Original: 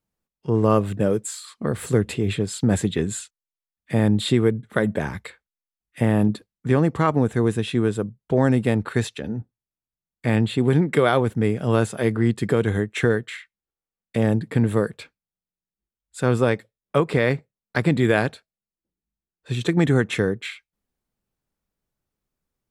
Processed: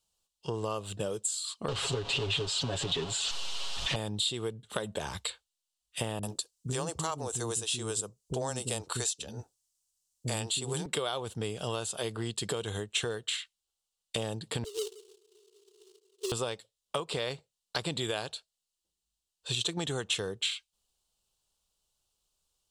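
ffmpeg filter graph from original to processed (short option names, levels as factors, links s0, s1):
-filter_complex "[0:a]asettb=1/sr,asplit=3[s0][s1][s2];[s0]atrim=end=1.684[s3];[s1]atrim=start=1.68:end=3.96,asetpts=PTS-STARTPTS,afade=t=in:d=0.004:c=qsin,afade=t=out:st=2.276:d=0.004:c=qsin,aeval=exprs='val(0)+0.5*0.0708*sgn(val(0))':c=same,lowpass=3000,aecho=1:1:7.3:0.8,atrim=end_sample=100548[s4];[s2]atrim=start=3.956[s5];[s3][s4]acrossfade=d=0.004:c1=hsin:c2=qsin[s6];[s6][s5]acrossfade=d=0.004:c1=qsin:c2=hsin,asettb=1/sr,asplit=3[s7][s8][s9];[s7]atrim=end=6.194[s10];[s8]atrim=start=6.19:end=10.86,asetpts=PTS-STARTPTS,afade=t=in:d=0.004:c=qsin,afade=t=out:st=4.666:d=0.004:c=qsin,highshelf=f=4600:t=q:w=1.5:g=7.5,acrossover=split=330[s11][s12];[s12]adelay=40[s13];[s11][s13]amix=inputs=2:normalize=0,atrim=end_sample=205947[s14];[s9]atrim=start=10.856[s15];[s10][s14]acrossfade=d=0.004:c1=hsin:c2=qsin[s16];[s16][s15]acrossfade=d=0.004:c1=qsin:c2=hsin,asettb=1/sr,asplit=3[s17][s18][s19];[s17]atrim=end=14.644[s20];[s18]atrim=start=14.64:end=16.32,asetpts=PTS-STARTPTS,afade=t=in:d=0.004:c=qsin,afade=t=out:st=1.676:d=0.004:c=qsin,aeval=exprs='val(0)+0.5*0.0316*sgn(val(0))':c=same,asuperpass=centerf=400:order=8:qfactor=5.2,acrusher=bits=4:mode=log:mix=0:aa=0.000001[s21];[s19]atrim=start=16.316[s22];[s20][s21]acrossfade=d=0.004:c1=hsin:c2=qsin[s23];[s23][s22]acrossfade=d=0.004:c1=qsin:c2=hsin,equalizer=f=125:t=o:w=1:g=-6,equalizer=f=250:t=o:w=1:g=-11,equalizer=f=1000:t=o:w=1:g=4,equalizer=f=2000:t=o:w=1:g=-11,equalizer=f=4000:t=o:w=1:g=11,equalizer=f=8000:t=o:w=1:g=12,acompressor=threshold=0.0282:ratio=6,equalizer=f=2900:w=4.1:g=10"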